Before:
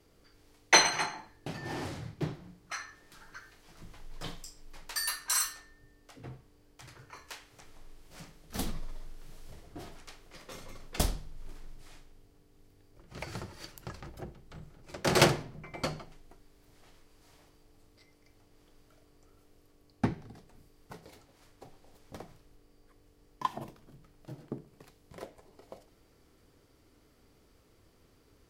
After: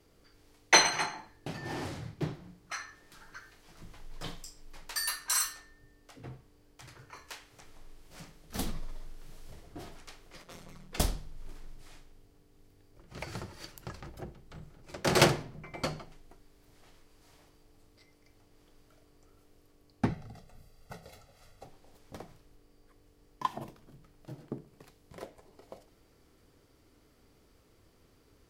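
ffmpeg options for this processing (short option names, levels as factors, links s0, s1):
-filter_complex "[0:a]asplit=3[s0][s1][s2];[s0]afade=t=out:st=10.42:d=0.02[s3];[s1]tremolo=f=170:d=1,afade=t=in:st=10.42:d=0.02,afade=t=out:st=10.91:d=0.02[s4];[s2]afade=t=in:st=10.91:d=0.02[s5];[s3][s4][s5]amix=inputs=3:normalize=0,asettb=1/sr,asplit=3[s6][s7][s8];[s6]atrim=end=20.094[s9];[s7]atrim=start=20.09:end=21.65,asetpts=PTS-STARTPTS,afade=t=in:d=0.004:c=qsin,afade=t=out:st=1.556:d=0.004:c=qsin,aecho=1:1:1.5:0.72,atrim=end_sample=68796[s10];[s8]atrim=start=21.646[s11];[s9][s10]acrossfade=d=0.004:c1=hsin:c2=qsin[s12];[s12][s11]acrossfade=d=0.004:c1=qsin:c2=hsin"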